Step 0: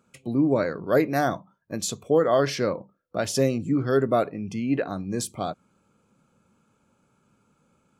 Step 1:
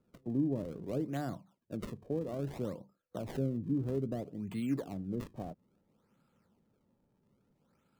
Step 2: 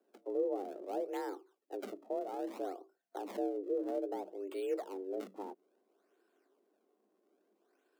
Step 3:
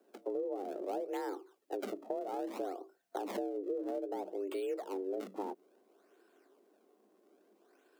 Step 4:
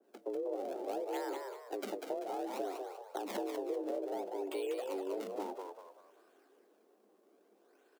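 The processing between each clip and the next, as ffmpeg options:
-filter_complex "[0:a]acrossover=split=300[s0][s1];[s1]acompressor=threshold=0.0224:ratio=6[s2];[s0][s2]amix=inputs=2:normalize=0,acrossover=split=900[s3][s4];[s4]acrusher=samples=36:mix=1:aa=0.000001:lfo=1:lforange=57.6:lforate=0.6[s5];[s3][s5]amix=inputs=2:normalize=0,volume=0.447"
-af "afreqshift=190,volume=0.75"
-af "acompressor=threshold=0.00794:ratio=6,volume=2.37"
-filter_complex "[0:a]asplit=2[s0][s1];[s1]asplit=5[s2][s3][s4][s5][s6];[s2]adelay=194,afreqshift=74,volume=0.562[s7];[s3]adelay=388,afreqshift=148,volume=0.209[s8];[s4]adelay=582,afreqshift=222,volume=0.0767[s9];[s5]adelay=776,afreqshift=296,volume=0.0285[s10];[s6]adelay=970,afreqshift=370,volume=0.0106[s11];[s7][s8][s9][s10][s11]amix=inputs=5:normalize=0[s12];[s0][s12]amix=inputs=2:normalize=0,adynamicequalizer=threshold=0.00158:dfrequency=1900:dqfactor=0.7:tfrequency=1900:tqfactor=0.7:attack=5:release=100:ratio=0.375:range=2.5:mode=boostabove:tftype=highshelf,volume=0.841"

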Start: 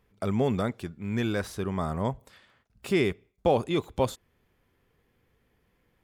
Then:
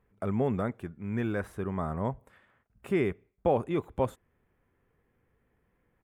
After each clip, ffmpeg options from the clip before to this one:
-af "firequalizer=gain_entry='entry(1700,0);entry(4500,-19);entry(8600,-8)':delay=0.05:min_phase=1,volume=0.75"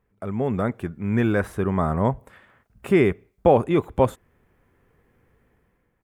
-af "dynaudnorm=f=170:g=7:m=3.16"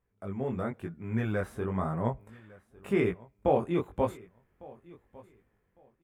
-af "flanger=delay=17:depth=6.3:speed=0.94,aecho=1:1:1154|2308:0.075|0.015,volume=0.501"

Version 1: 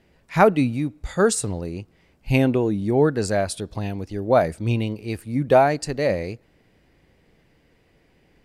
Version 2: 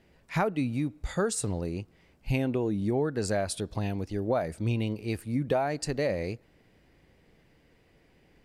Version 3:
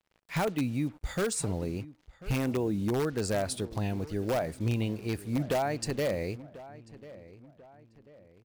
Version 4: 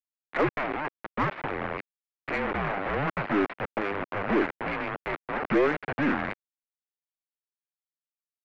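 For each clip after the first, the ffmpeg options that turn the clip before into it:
-af "acompressor=threshold=0.0794:ratio=5,volume=0.75"
-filter_complex "[0:a]asplit=2[s0][s1];[s1]aeval=exprs='(mod(10.6*val(0)+1,2)-1)/10.6':c=same,volume=0.447[s2];[s0][s2]amix=inputs=2:normalize=0,acrusher=bits=7:mix=0:aa=0.5,asplit=2[s3][s4];[s4]adelay=1041,lowpass=f=2400:p=1,volume=0.133,asplit=2[s5][s6];[s6]adelay=1041,lowpass=f=2400:p=1,volume=0.42,asplit=2[s7][s8];[s8]adelay=1041,lowpass=f=2400:p=1,volume=0.42[s9];[s3][s5][s7][s9]amix=inputs=4:normalize=0,volume=0.631"
-af "acrusher=bits=4:mix=0:aa=0.000001,highpass=f=590:t=q:w=0.5412,highpass=f=590:t=q:w=1.307,lowpass=f=2600:t=q:w=0.5176,lowpass=f=2600:t=q:w=0.7071,lowpass=f=2600:t=q:w=1.932,afreqshift=-300,aeval=exprs='0.0944*(cos(1*acos(clip(val(0)/0.0944,-1,1)))-cos(1*PI/2))+0.00422*(cos(6*acos(clip(val(0)/0.0944,-1,1)))-cos(6*PI/2))':c=same,volume=2.37"

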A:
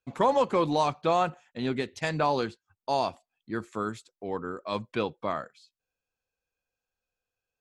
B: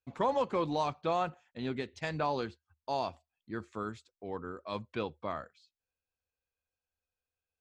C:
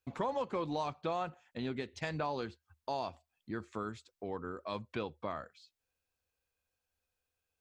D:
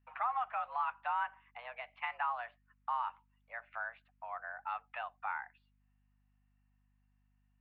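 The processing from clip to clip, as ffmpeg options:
-af "lowpass=6500,equalizer=f=77:t=o:w=0.4:g=12.5,volume=0.473"
-af "acompressor=threshold=0.00562:ratio=2,volume=1.78"
-af "highpass=f=560:t=q:w=0.5412,highpass=f=560:t=q:w=1.307,lowpass=f=2400:t=q:w=0.5176,lowpass=f=2400:t=q:w=0.7071,lowpass=f=2400:t=q:w=1.932,afreqshift=240,aeval=exprs='val(0)+0.000178*(sin(2*PI*50*n/s)+sin(2*PI*2*50*n/s)/2+sin(2*PI*3*50*n/s)/3+sin(2*PI*4*50*n/s)/4+sin(2*PI*5*50*n/s)/5)':c=same,volume=1.33"

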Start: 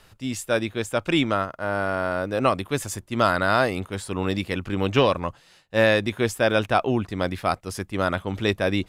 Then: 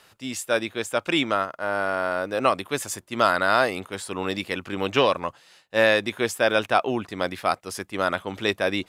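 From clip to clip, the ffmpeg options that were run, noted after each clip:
-af "highpass=f=410:p=1,volume=1.19"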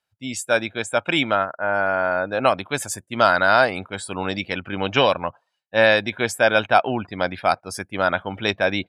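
-af "afftdn=nr=30:nf=-42,aecho=1:1:1.3:0.38,volume=1.41"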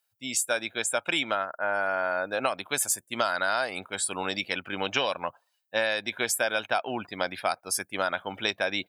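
-af "aemphasis=mode=production:type=bsi,acompressor=threshold=0.112:ratio=6,volume=0.668"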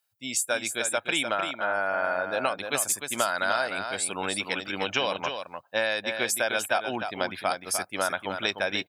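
-af "aecho=1:1:302:0.447"

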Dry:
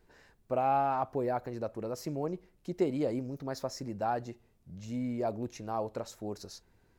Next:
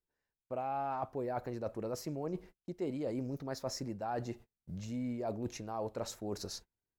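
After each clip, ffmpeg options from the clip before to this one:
-af "agate=range=0.0224:threshold=0.00224:ratio=16:detection=peak,areverse,acompressor=threshold=0.01:ratio=5,areverse,volume=1.68"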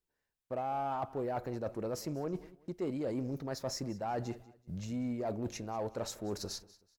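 -filter_complex "[0:a]asplit=2[s0][s1];[s1]aeval=exprs='0.0178*(abs(mod(val(0)/0.0178+3,4)-2)-1)':c=same,volume=0.251[s2];[s0][s2]amix=inputs=2:normalize=0,aecho=1:1:189|378:0.1|0.031"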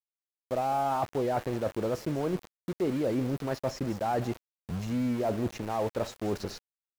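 -filter_complex "[0:a]aeval=exprs='val(0)*gte(abs(val(0)),0.00631)':c=same,acrossover=split=3300[s0][s1];[s1]acompressor=threshold=0.00224:ratio=4:attack=1:release=60[s2];[s0][s2]amix=inputs=2:normalize=0,volume=2.24"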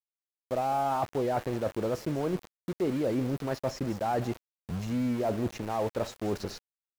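-af anull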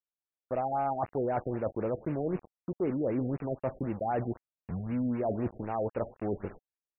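-af "afftfilt=real='re*lt(b*sr/1024,740*pow(2900/740,0.5+0.5*sin(2*PI*3.9*pts/sr)))':imag='im*lt(b*sr/1024,740*pow(2900/740,0.5+0.5*sin(2*PI*3.9*pts/sr)))':win_size=1024:overlap=0.75,volume=0.841"

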